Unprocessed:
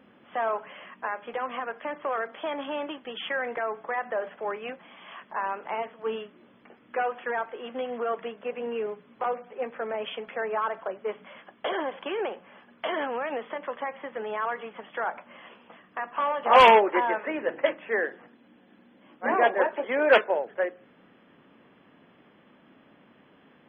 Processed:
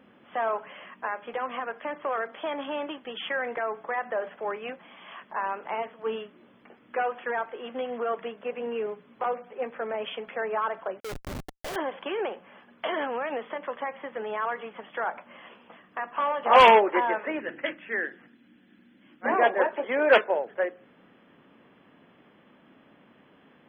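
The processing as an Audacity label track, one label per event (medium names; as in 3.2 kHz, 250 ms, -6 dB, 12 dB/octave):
11.000000	11.760000	Schmitt trigger flips at -42 dBFS
17.400000	19.250000	high-order bell 700 Hz -9.5 dB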